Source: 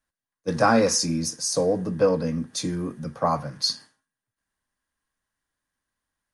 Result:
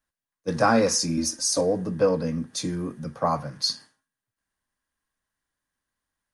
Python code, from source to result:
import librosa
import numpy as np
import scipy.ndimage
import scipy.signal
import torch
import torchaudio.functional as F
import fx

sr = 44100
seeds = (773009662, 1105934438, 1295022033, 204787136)

y = fx.comb(x, sr, ms=3.3, depth=0.95, at=(1.17, 1.61))
y = F.gain(torch.from_numpy(y), -1.0).numpy()